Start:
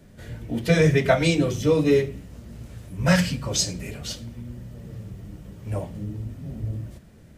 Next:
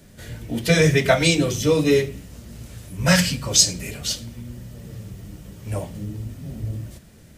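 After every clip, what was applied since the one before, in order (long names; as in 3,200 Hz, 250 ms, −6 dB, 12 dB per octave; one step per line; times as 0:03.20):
high-shelf EQ 2,700 Hz +9.5 dB
level +1 dB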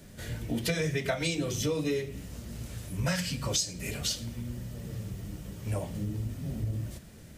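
downward compressor 6 to 1, threshold −26 dBFS, peak gain reduction 15.5 dB
level −1.5 dB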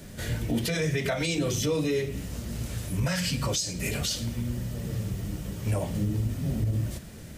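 brickwall limiter −25.5 dBFS, peak gain reduction 9.5 dB
level +6.5 dB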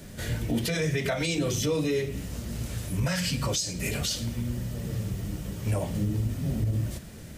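no processing that can be heard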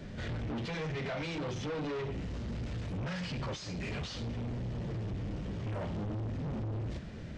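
hard clipping −34.5 dBFS, distortion −5 dB
Gaussian smoothing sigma 1.9 samples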